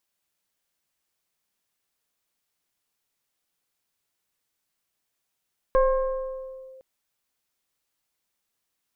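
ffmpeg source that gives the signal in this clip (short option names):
-f lavfi -i "aevalsrc='0.188*pow(10,-3*t/2.08)*sin(2*PI*524*t+0.88*clip(1-t/1.02,0,1)*sin(2*PI*1.04*524*t))':d=1.06:s=44100"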